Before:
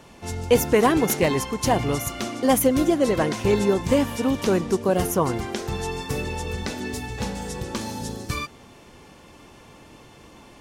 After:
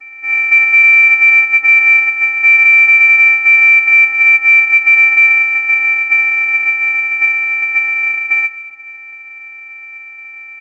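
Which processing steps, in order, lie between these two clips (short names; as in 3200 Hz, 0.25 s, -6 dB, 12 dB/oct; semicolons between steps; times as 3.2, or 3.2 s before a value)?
sample sorter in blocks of 256 samples; hard clip -20 dBFS, distortion -8 dB; high shelf 2000 Hz +10 dB; vocoder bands 8, square 256 Hz; comb 3.7 ms, depth 77%; darkening echo 96 ms, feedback 74%, low-pass 1100 Hz, level -14 dB; on a send at -17 dB: reverb RT60 0.60 s, pre-delay 4 ms; on the sum: inverted band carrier 2600 Hz; bell 460 Hz +8 dB 2.1 oct; maximiser +11.5 dB; gain -1 dB; A-law 128 kbps 16000 Hz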